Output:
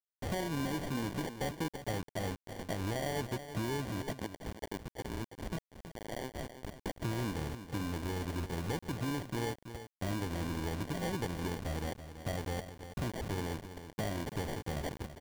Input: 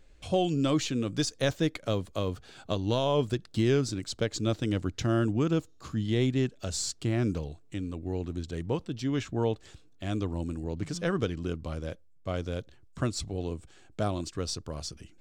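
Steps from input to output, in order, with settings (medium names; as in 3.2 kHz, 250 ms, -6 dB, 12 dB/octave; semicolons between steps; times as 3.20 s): 4.19–6.86 s: elliptic band-pass 1.4–3 kHz, stop band 40 dB; compression 5:1, threshold -40 dBFS, peak gain reduction 17 dB; sample-and-hold 34×; saturation -33.5 dBFS, distortion -19 dB; word length cut 8-bit, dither none; delay 330 ms -11 dB; trim +6.5 dB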